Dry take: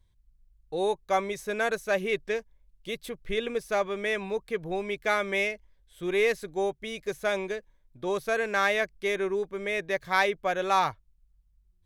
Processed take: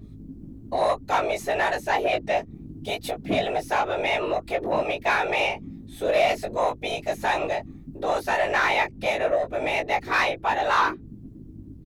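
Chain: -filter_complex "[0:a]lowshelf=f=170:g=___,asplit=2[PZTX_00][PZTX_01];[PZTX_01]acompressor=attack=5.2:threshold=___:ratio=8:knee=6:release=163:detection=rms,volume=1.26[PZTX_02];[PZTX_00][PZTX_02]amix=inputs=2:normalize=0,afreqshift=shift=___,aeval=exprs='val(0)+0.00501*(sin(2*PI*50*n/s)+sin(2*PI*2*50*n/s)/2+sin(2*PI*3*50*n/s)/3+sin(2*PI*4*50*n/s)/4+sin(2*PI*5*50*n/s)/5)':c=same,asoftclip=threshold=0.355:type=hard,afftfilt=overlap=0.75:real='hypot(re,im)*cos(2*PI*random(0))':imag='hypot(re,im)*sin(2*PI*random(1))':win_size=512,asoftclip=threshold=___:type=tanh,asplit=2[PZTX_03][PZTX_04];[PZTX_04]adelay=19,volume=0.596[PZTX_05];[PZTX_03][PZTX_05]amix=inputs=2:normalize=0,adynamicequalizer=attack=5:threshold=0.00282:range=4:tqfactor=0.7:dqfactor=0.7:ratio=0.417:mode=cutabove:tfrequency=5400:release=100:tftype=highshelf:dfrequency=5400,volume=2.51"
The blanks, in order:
6.5, 0.0141, 210, 0.0668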